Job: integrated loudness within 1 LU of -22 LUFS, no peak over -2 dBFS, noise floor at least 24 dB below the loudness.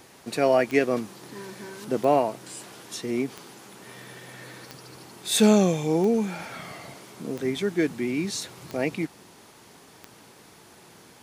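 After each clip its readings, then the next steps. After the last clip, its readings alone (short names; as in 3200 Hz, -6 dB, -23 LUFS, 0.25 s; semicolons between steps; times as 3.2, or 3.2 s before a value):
clicks 8; loudness -25.0 LUFS; peak -8.0 dBFS; loudness target -22.0 LUFS
-> de-click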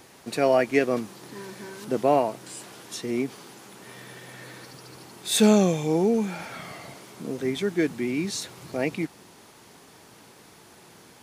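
clicks 0; loudness -25.0 LUFS; peak -8.0 dBFS; loudness target -22.0 LUFS
-> gain +3 dB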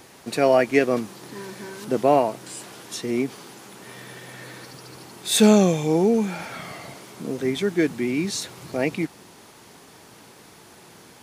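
loudness -22.0 LUFS; peak -5.0 dBFS; noise floor -49 dBFS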